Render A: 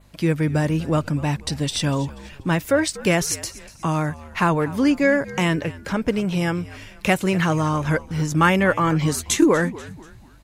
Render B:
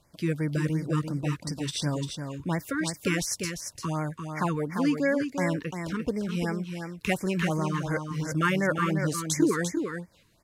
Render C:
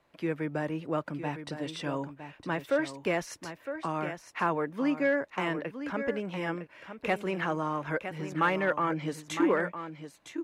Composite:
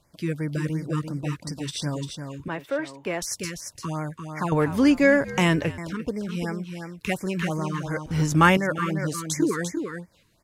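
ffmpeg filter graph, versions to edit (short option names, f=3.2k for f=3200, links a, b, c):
-filter_complex "[0:a]asplit=2[a][b];[1:a]asplit=4[c][d][e][f];[c]atrim=end=2.482[g];[2:a]atrim=start=2.478:end=3.222[h];[d]atrim=start=3.218:end=4.522[i];[a]atrim=start=4.518:end=5.782[j];[e]atrim=start=5.778:end=8.062[k];[b]atrim=start=8.058:end=8.572[l];[f]atrim=start=8.568[m];[g][h]acrossfade=d=0.004:c1=hsin:c2=hsin[n];[n][i]acrossfade=d=0.004:c1=hsin:c2=hsin[o];[o][j]acrossfade=d=0.004:c1=hsin:c2=hsin[p];[p][k]acrossfade=d=0.004:c1=hsin:c2=hsin[q];[q][l]acrossfade=d=0.004:c1=hsin:c2=hsin[r];[r][m]acrossfade=d=0.004:c1=hsin:c2=hsin"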